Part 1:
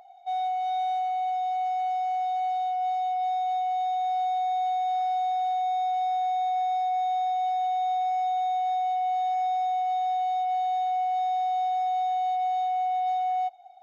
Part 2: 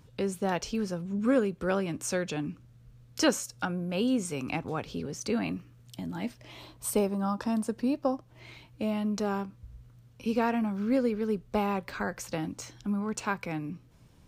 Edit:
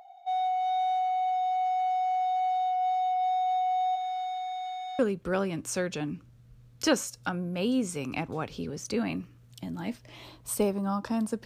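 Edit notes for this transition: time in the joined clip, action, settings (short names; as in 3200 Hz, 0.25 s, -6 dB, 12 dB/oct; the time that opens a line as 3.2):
part 1
3.95–4.99 HPF 880 Hz -> 1400 Hz
4.99 switch to part 2 from 1.35 s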